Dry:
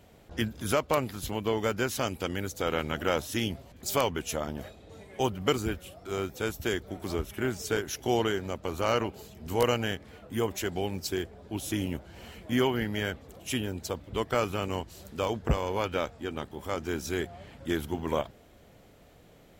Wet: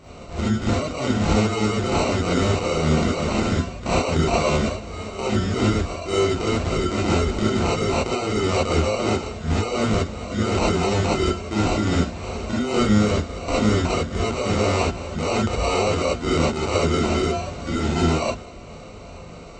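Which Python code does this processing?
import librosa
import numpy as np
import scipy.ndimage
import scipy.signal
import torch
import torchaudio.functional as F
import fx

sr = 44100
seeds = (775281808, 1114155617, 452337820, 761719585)

y = fx.hum_notches(x, sr, base_hz=60, count=6)
y = fx.over_compress(y, sr, threshold_db=-34.0, ratio=-1.0)
y = fx.sample_hold(y, sr, seeds[0], rate_hz=1700.0, jitter_pct=0)
y = fx.brickwall_lowpass(y, sr, high_hz=8200.0)
y = fx.rev_gated(y, sr, seeds[1], gate_ms=90, shape='rising', drr_db=-7.5)
y = y * librosa.db_to_amplitude(5.5)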